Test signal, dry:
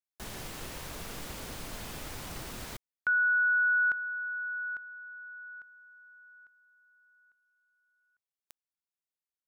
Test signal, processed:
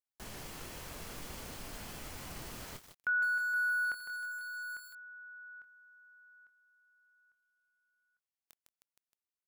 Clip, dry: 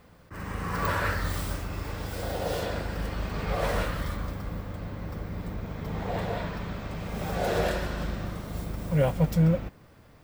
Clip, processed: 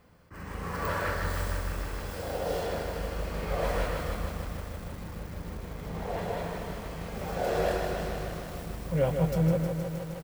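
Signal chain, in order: band-stop 3.7 kHz, Q 18; dynamic bell 520 Hz, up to +4 dB, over -41 dBFS, Q 1.1; doubling 24 ms -10.5 dB; bit-crushed delay 156 ms, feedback 80%, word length 7-bit, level -6 dB; trim -5 dB

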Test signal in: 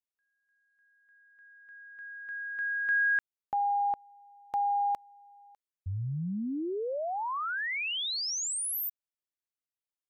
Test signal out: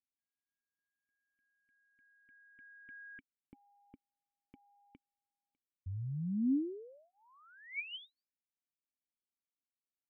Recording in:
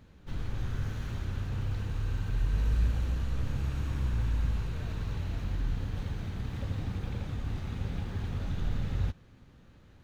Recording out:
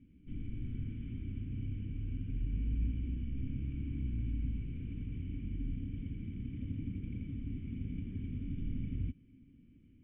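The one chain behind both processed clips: cascade formant filter i; static phaser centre 1.8 kHz, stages 4; trim +6 dB

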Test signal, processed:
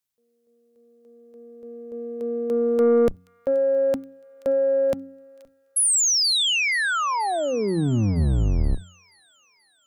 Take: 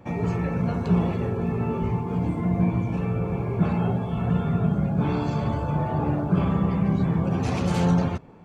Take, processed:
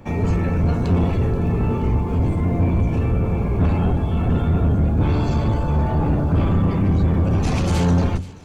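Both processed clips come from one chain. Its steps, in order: octave divider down 1 oct, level +4 dB; treble shelf 3.1 kHz +6 dB; de-hum 90.27 Hz, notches 3; saturation -15 dBFS; on a send: feedback echo behind a high-pass 479 ms, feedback 59%, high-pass 2.1 kHz, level -17 dB; on the sum: trim +3.5 dB

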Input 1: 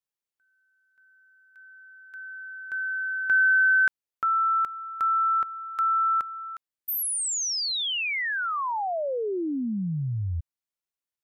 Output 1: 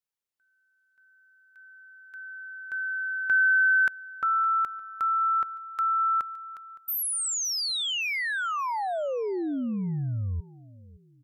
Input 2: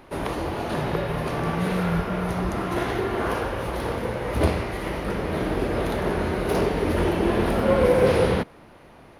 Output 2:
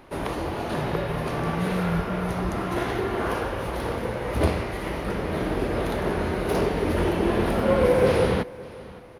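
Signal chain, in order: feedback delay 565 ms, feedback 35%, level -20.5 dB; trim -1 dB

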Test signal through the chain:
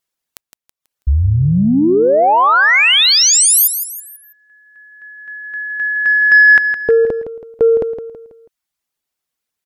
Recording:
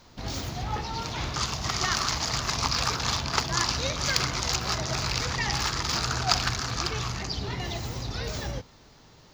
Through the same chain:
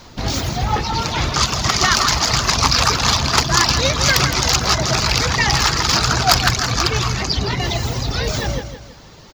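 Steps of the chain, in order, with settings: reverb removal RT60 0.66 s; sine folder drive 10 dB, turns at -2.5 dBFS; on a send: feedback delay 163 ms, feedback 40%, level -9.5 dB; on the sum: trim -1 dB

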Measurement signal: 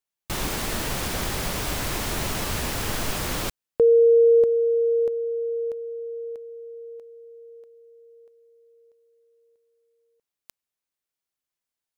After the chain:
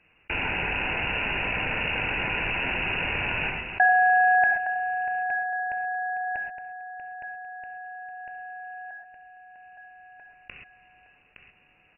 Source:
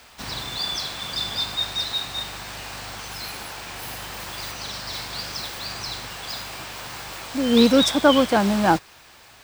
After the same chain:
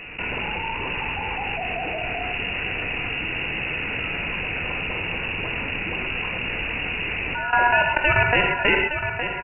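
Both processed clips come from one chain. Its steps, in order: high-pass 190 Hz 24 dB/octave; peaking EQ 1.4 kHz +14.5 dB 0.63 oct; ring modulator 1.6 kHz; level held to a coarse grid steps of 20 dB; feedback delay 865 ms, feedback 21%, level -16 dB; gated-style reverb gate 150 ms flat, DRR 4.5 dB; frequency inversion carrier 2.8 kHz; level flattener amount 50%; trim +2 dB

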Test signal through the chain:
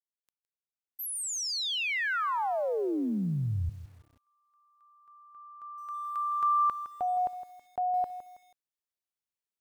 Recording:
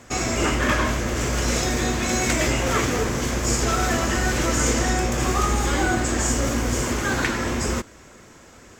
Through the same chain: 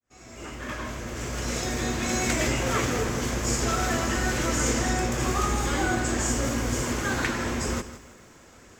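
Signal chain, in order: fade-in on the opening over 2.14 s; bit-crushed delay 162 ms, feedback 35%, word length 8-bit, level -13 dB; trim -4 dB

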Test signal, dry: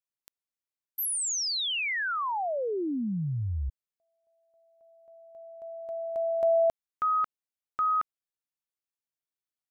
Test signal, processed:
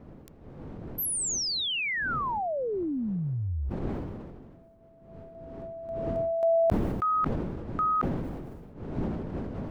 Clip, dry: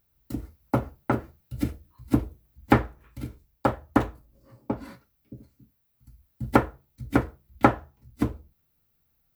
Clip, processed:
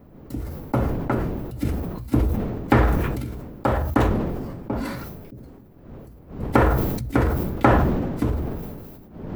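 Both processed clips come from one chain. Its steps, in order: wind noise 290 Hz -42 dBFS; decay stretcher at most 32 dB/s

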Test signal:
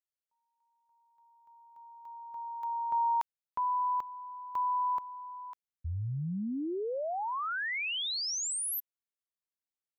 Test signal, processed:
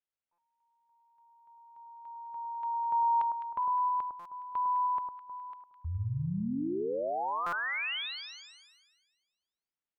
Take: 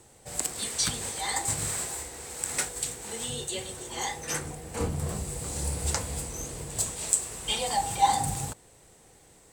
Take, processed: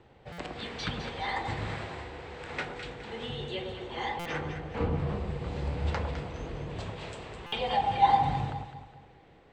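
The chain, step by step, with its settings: low-pass 3.3 kHz 24 dB/octave; on a send: echo whose repeats swap between lows and highs 104 ms, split 1.2 kHz, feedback 62%, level -4.5 dB; on the sum: buffer glitch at 0.32/4.19/7.46 s, samples 256, times 10

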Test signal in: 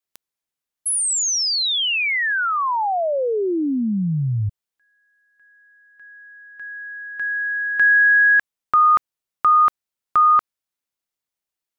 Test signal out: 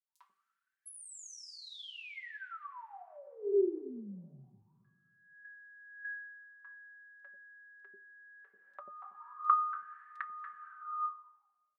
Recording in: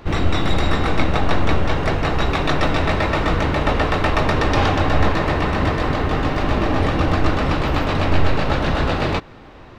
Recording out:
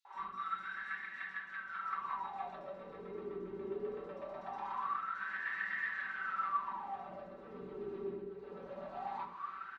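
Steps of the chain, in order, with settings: two-slope reverb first 0.26 s, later 2.1 s, from -18 dB, DRR 0 dB; compression 16:1, threshold -24 dBFS; peaking EQ 590 Hz -12 dB 0.88 oct; wah-wah 0.22 Hz 390–1800 Hz, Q 14; treble shelf 6.4 kHz +9.5 dB; comb 5.2 ms, depth 73%; three bands offset in time highs, mids, lows 50/140 ms, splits 510/4500 Hz; trim +6.5 dB

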